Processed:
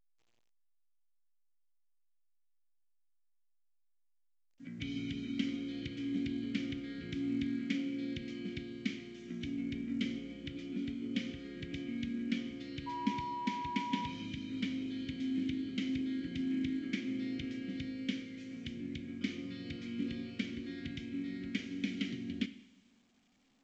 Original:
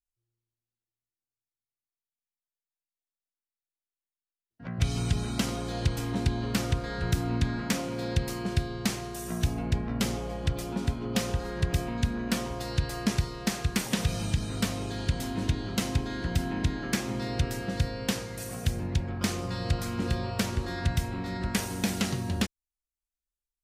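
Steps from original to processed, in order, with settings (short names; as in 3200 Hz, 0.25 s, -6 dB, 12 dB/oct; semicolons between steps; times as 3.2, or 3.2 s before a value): vowel filter i; 12.86–14.06 whine 970 Hz -41 dBFS; two-slope reverb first 0.83 s, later 2.9 s, from -18 dB, DRR 11.5 dB; gain +3.5 dB; A-law 128 kbps 16000 Hz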